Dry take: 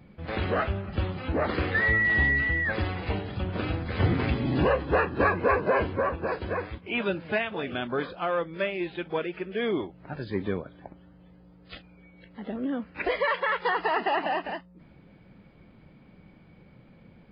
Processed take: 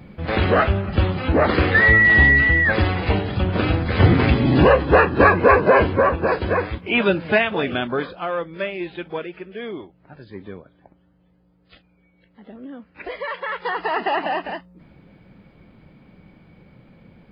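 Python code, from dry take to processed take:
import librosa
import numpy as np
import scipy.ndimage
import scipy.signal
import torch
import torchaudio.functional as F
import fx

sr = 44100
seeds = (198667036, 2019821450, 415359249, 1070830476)

y = fx.gain(x, sr, db=fx.line((7.63, 10.0), (8.2, 2.5), (9.0, 2.5), (10.0, -6.5), (12.86, -6.5), (14.06, 4.5)))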